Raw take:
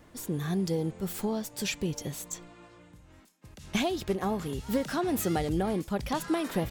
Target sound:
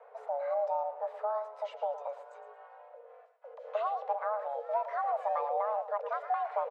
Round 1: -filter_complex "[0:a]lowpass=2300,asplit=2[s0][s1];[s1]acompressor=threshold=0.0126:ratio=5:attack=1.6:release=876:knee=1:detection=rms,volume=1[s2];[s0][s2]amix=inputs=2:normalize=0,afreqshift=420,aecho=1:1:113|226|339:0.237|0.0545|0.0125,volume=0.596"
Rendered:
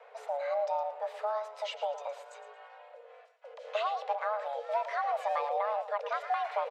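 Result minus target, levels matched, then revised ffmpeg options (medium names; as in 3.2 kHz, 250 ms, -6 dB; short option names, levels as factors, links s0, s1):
2 kHz band +6.0 dB
-filter_complex "[0:a]lowpass=920,asplit=2[s0][s1];[s1]acompressor=threshold=0.0126:ratio=5:attack=1.6:release=876:knee=1:detection=rms,volume=1[s2];[s0][s2]amix=inputs=2:normalize=0,afreqshift=420,aecho=1:1:113|226|339:0.237|0.0545|0.0125,volume=0.596"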